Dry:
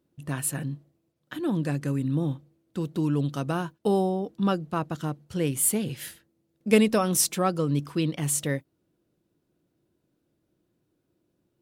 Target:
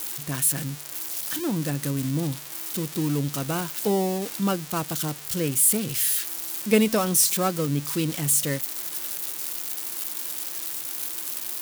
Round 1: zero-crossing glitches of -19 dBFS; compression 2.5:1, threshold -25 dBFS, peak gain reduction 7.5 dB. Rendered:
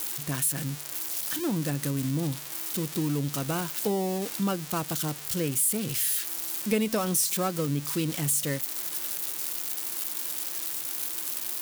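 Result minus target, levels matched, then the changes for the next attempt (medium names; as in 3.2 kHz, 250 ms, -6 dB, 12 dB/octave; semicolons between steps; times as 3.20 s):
compression: peak gain reduction +7.5 dB
remove: compression 2.5:1, threshold -25 dBFS, peak gain reduction 7.5 dB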